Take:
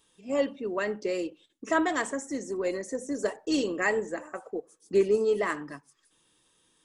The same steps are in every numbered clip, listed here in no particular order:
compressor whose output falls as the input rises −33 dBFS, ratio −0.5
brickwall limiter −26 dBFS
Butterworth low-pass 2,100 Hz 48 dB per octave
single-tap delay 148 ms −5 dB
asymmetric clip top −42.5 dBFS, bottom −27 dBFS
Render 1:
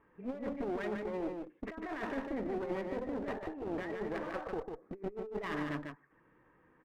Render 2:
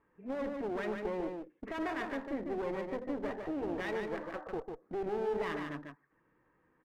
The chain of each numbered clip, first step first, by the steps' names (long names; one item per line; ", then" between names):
compressor whose output falls as the input rises, then Butterworth low-pass, then brickwall limiter, then asymmetric clip, then single-tap delay
brickwall limiter, then Butterworth low-pass, then asymmetric clip, then compressor whose output falls as the input rises, then single-tap delay